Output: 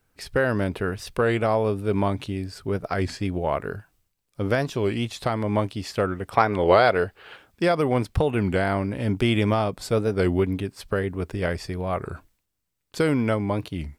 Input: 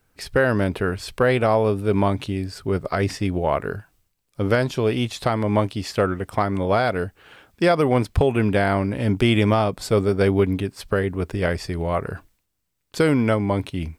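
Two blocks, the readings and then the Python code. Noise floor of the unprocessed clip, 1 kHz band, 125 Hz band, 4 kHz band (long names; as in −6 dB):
−73 dBFS, −1.0 dB, −3.5 dB, −3.0 dB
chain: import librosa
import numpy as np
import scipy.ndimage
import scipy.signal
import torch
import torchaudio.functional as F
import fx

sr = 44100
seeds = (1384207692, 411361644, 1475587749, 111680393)

y = fx.spec_box(x, sr, start_s=6.3, length_s=1.07, low_hz=360.0, high_hz=5200.0, gain_db=7)
y = fx.record_warp(y, sr, rpm=33.33, depth_cents=160.0)
y = y * 10.0 ** (-3.5 / 20.0)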